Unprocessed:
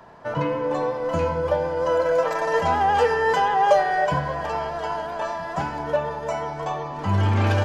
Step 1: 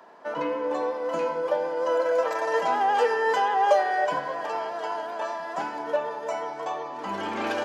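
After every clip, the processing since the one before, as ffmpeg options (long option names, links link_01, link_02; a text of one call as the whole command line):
ffmpeg -i in.wav -af "highpass=frequency=250:width=0.5412,highpass=frequency=250:width=1.3066,volume=-3dB" out.wav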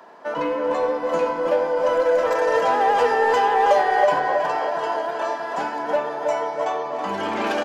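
ffmpeg -i in.wav -filter_complex "[0:a]asplit=2[link_01][link_02];[link_02]asoftclip=type=hard:threshold=-24dB,volume=-3dB[link_03];[link_01][link_03]amix=inputs=2:normalize=0,asplit=2[link_04][link_05];[link_05]adelay=322,lowpass=frequency=2200:poles=1,volume=-4.5dB,asplit=2[link_06][link_07];[link_07]adelay=322,lowpass=frequency=2200:poles=1,volume=0.54,asplit=2[link_08][link_09];[link_09]adelay=322,lowpass=frequency=2200:poles=1,volume=0.54,asplit=2[link_10][link_11];[link_11]adelay=322,lowpass=frequency=2200:poles=1,volume=0.54,asplit=2[link_12][link_13];[link_13]adelay=322,lowpass=frequency=2200:poles=1,volume=0.54,asplit=2[link_14][link_15];[link_15]adelay=322,lowpass=frequency=2200:poles=1,volume=0.54,asplit=2[link_16][link_17];[link_17]adelay=322,lowpass=frequency=2200:poles=1,volume=0.54[link_18];[link_04][link_06][link_08][link_10][link_12][link_14][link_16][link_18]amix=inputs=8:normalize=0" out.wav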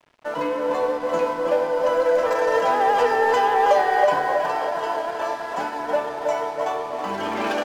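ffmpeg -i in.wav -af "aeval=exprs='sgn(val(0))*max(abs(val(0))-0.00794,0)':channel_layout=same" out.wav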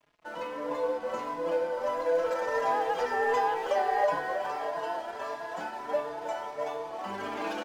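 ffmpeg -i in.wav -filter_complex "[0:a]asplit=2[link_01][link_02];[link_02]adelay=4.5,afreqshift=1.5[link_03];[link_01][link_03]amix=inputs=2:normalize=1,volume=-6dB" out.wav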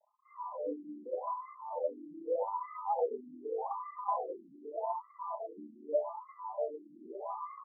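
ffmpeg -i in.wav -af "asuperstop=centerf=1600:order=20:qfactor=2,afftfilt=real='re*between(b*sr/1024,240*pow(1500/240,0.5+0.5*sin(2*PI*0.83*pts/sr))/1.41,240*pow(1500/240,0.5+0.5*sin(2*PI*0.83*pts/sr))*1.41)':imag='im*between(b*sr/1024,240*pow(1500/240,0.5+0.5*sin(2*PI*0.83*pts/sr))/1.41,240*pow(1500/240,0.5+0.5*sin(2*PI*0.83*pts/sr))*1.41)':win_size=1024:overlap=0.75" out.wav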